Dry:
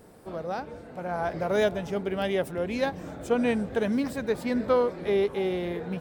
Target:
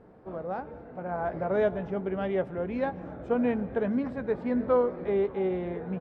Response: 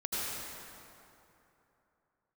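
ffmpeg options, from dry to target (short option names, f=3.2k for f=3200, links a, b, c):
-filter_complex "[0:a]lowpass=1.6k,asplit=2[a][b];[b]adelay=16,volume=-13.5dB[c];[a][c]amix=inputs=2:normalize=0,asplit=2[d][e];[1:a]atrim=start_sample=2205,afade=t=out:st=0.33:d=0.01,atrim=end_sample=14994[f];[e][f]afir=irnorm=-1:irlink=0,volume=-24.5dB[g];[d][g]amix=inputs=2:normalize=0,volume=-2dB"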